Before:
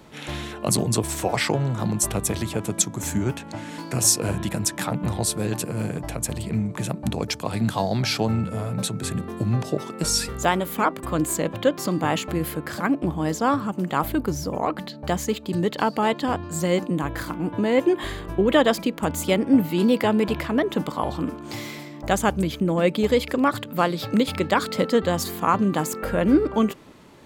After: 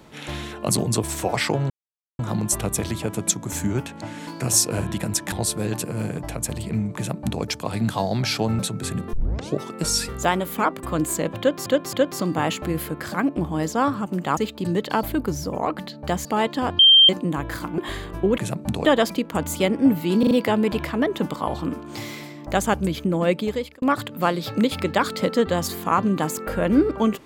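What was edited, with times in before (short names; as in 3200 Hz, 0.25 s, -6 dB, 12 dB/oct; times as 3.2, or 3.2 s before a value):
1.7 insert silence 0.49 s
4.83–5.12 cut
6.76–7.23 copy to 18.53
8.39–8.79 cut
9.33 tape start 0.43 s
11.59–11.86 loop, 3 plays
15.25–15.91 move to 14.03
16.45–16.75 bleep 3160 Hz -8.5 dBFS
17.44–17.93 cut
19.87 stutter 0.04 s, 4 plays
22.84–23.38 fade out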